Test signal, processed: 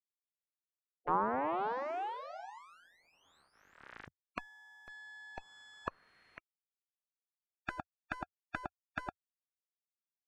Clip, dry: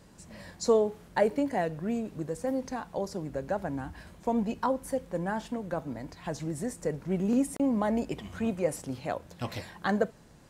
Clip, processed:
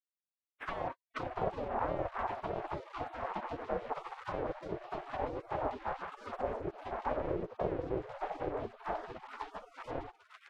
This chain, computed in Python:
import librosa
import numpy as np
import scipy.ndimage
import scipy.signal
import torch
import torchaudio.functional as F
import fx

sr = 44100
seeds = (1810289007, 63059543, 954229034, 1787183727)

y = fx.fade_in_head(x, sr, length_s=3.06)
y = fx.fuzz(y, sr, gain_db=47.0, gate_db=-54.0)
y = fx.spec_gate(y, sr, threshold_db=-25, keep='weak')
y = fx.envelope_lowpass(y, sr, base_hz=300.0, top_hz=2100.0, q=2.6, full_db=-21.0, direction='down')
y = F.gain(torch.from_numpy(y), -2.0).numpy()